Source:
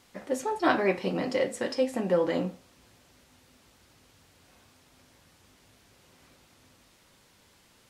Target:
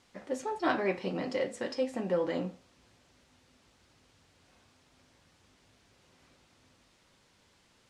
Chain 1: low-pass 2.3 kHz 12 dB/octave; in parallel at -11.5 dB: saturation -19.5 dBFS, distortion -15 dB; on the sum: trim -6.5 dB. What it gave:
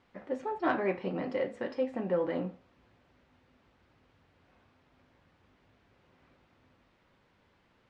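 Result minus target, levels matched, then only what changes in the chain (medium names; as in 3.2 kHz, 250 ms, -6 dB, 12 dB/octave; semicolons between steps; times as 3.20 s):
8 kHz band -18.5 dB
change: low-pass 8 kHz 12 dB/octave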